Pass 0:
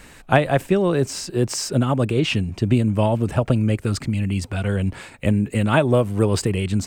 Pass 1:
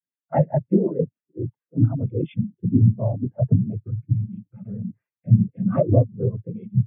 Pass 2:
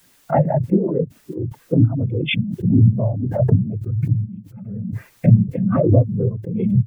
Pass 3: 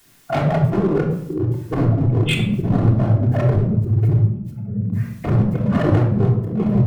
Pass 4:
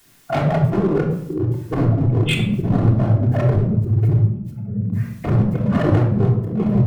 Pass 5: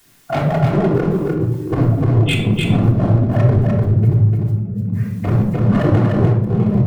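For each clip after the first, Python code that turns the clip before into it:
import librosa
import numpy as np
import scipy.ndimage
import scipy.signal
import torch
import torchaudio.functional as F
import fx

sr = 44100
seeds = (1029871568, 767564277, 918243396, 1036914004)

y1 = scipy.signal.sosfilt(scipy.signal.butter(6, 3100.0, 'lowpass', fs=sr, output='sos'), x)
y1 = fx.noise_vocoder(y1, sr, seeds[0], bands=16)
y1 = fx.spectral_expand(y1, sr, expansion=2.5)
y2 = fx.low_shelf(y1, sr, hz=72.0, db=8.5)
y2 = fx.pre_swell(y2, sr, db_per_s=45.0)
y3 = np.clip(10.0 ** (19.5 / 20.0) * y2, -1.0, 1.0) / 10.0 ** (19.5 / 20.0)
y3 = fx.room_shoebox(y3, sr, seeds[1], volume_m3=2000.0, walls='furnished', distance_m=3.3)
y4 = y3
y5 = y4 + 10.0 ** (-3.5 / 20.0) * np.pad(y4, (int(299 * sr / 1000.0), 0))[:len(y4)]
y5 = F.gain(torch.from_numpy(y5), 1.0).numpy()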